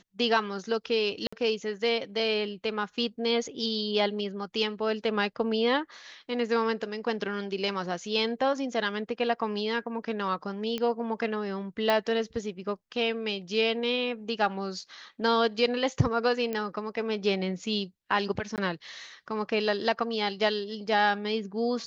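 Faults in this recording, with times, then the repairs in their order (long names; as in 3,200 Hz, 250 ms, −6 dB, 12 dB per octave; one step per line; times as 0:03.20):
0:01.27–0:01.32: drop-out 55 ms
0:10.78: click −18 dBFS
0:11.90: click −13 dBFS
0:16.53: click −19 dBFS
0:18.56–0:18.58: drop-out 18 ms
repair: click removal
repair the gap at 0:01.27, 55 ms
repair the gap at 0:18.56, 18 ms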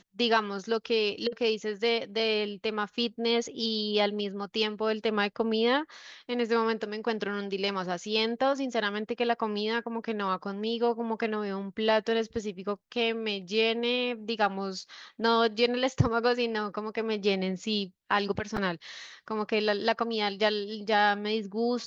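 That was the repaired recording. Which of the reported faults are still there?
none of them is left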